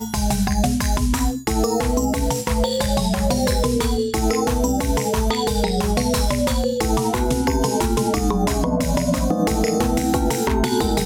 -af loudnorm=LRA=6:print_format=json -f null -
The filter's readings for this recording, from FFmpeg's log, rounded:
"input_i" : "-20.4",
"input_tp" : "-8.4",
"input_lra" : "0.6",
"input_thresh" : "-30.4",